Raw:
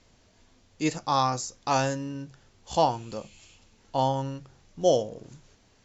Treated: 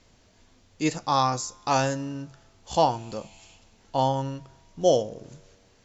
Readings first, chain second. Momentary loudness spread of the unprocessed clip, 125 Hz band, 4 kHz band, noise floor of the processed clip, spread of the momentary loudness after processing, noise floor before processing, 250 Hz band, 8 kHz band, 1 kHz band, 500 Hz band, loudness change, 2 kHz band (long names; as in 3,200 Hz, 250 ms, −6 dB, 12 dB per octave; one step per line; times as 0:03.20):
16 LU, +1.5 dB, +1.5 dB, −60 dBFS, 16 LU, −62 dBFS, +1.5 dB, can't be measured, +1.5 dB, +1.5 dB, +1.5 dB, +1.5 dB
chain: tuned comb filter 95 Hz, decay 1.9 s, mix 30%
level +4.5 dB